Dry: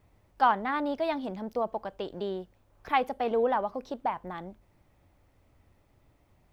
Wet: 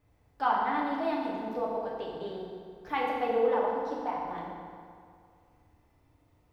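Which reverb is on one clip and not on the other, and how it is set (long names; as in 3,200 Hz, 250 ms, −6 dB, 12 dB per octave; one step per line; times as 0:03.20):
feedback delay network reverb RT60 2.2 s, low-frequency decay 1×, high-frequency decay 0.7×, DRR −4.5 dB
level −7.5 dB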